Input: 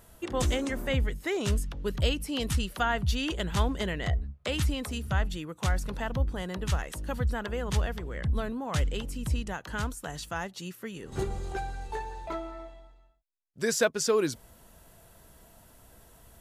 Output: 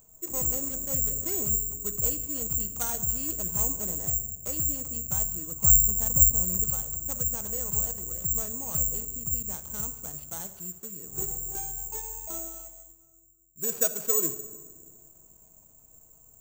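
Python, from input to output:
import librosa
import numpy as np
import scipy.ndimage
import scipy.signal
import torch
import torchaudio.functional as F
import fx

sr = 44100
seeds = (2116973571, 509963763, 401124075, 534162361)

y = scipy.signal.medfilt(x, 25)
y = fx.low_shelf(y, sr, hz=160.0, db=11.5, at=(5.51, 6.64))
y = fx.room_shoebox(y, sr, seeds[0], volume_m3=1800.0, walls='mixed', distance_m=0.59)
y = (np.kron(y[::6], np.eye(6)[0]) * 6)[:len(y)]
y = fx.env_flatten(y, sr, amount_pct=50, at=(1.05, 1.45))
y = F.gain(torch.from_numpy(y), -8.0).numpy()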